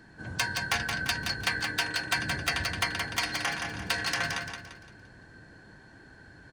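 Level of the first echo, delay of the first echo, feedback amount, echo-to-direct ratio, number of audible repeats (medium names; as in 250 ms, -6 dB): -5.5 dB, 172 ms, 39%, -5.0 dB, 4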